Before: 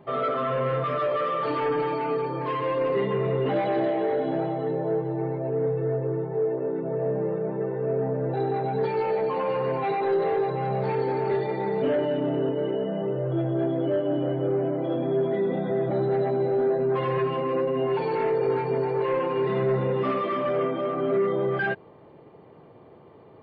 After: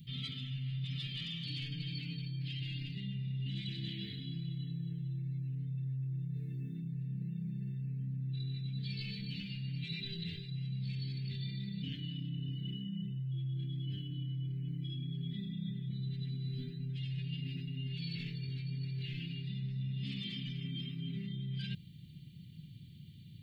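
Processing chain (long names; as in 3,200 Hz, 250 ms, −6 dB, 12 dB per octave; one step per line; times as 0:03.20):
elliptic band-stop filter 170–3,300 Hz, stop band 60 dB
high-shelf EQ 3,900 Hz +11 dB
reversed playback
downward compressor 6 to 1, threshold −44 dBFS, peak gain reduction 15.5 dB
reversed playback
level +7 dB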